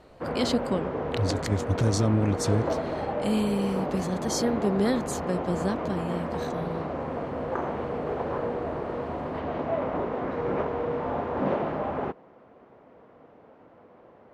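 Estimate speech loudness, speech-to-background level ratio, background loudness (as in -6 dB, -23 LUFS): -29.0 LUFS, 2.0 dB, -31.0 LUFS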